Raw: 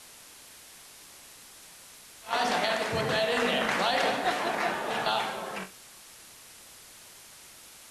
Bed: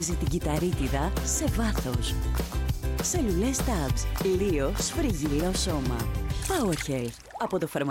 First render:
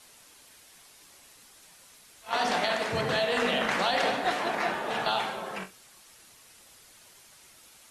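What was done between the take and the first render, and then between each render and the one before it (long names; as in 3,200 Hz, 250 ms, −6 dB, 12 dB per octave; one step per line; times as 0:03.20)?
broadband denoise 6 dB, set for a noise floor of −51 dBFS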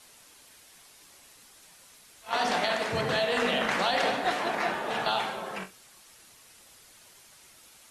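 no processing that can be heard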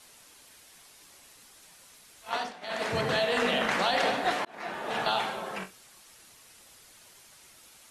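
0:02.28–0:02.86: duck −20.5 dB, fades 0.25 s
0:04.45–0:04.99: fade in linear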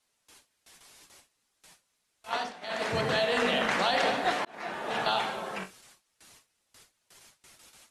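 low-pass filter 11,000 Hz 12 dB per octave
noise gate with hold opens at −44 dBFS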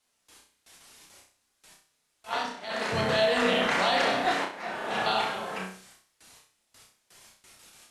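flutter between parallel walls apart 5.5 metres, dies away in 0.43 s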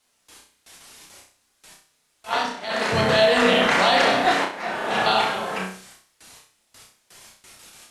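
level +7 dB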